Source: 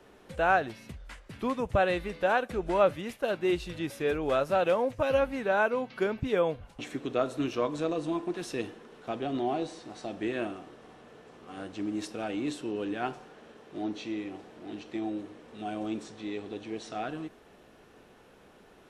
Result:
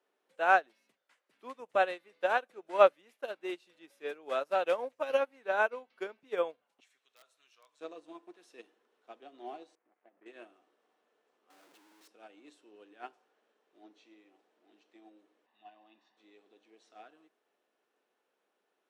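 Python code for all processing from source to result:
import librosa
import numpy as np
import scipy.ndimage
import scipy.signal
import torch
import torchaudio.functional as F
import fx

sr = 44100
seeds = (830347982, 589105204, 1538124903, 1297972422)

y = fx.chain(x, sr, fx.tone_stack(knobs='10-0-10'),
    fx.overflow_wrap(gain_db=29.5), at=(6.8, 7.81))
y = fx.chain(y, sr, fx.dead_time(dead_ms=0.21),
    fx.lowpass(hz=2200.0, slope=24),
    fx.level_steps(step_db=12), at=(9.75, 10.26))
y = fx.chain(y, sr, fx.cvsd(bps=64000),
    fx.low_shelf(hz=440.0, db=-4.0),
    fx.schmitt(flips_db=-51.5), at=(11.5, 12.08))
y = fx.chain(y, sr, fx.lowpass(hz=4200.0, slope=24),
    fx.low_shelf(hz=290.0, db=-11.0),
    fx.comb(ms=1.1, depth=0.79), at=(15.46, 16.17))
y = scipy.signal.sosfilt(scipy.signal.bessel(4, 420.0, 'highpass', norm='mag', fs=sr, output='sos'), y)
y = fx.upward_expand(y, sr, threshold_db=-38.0, expansion=2.5)
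y = y * librosa.db_to_amplitude(4.5)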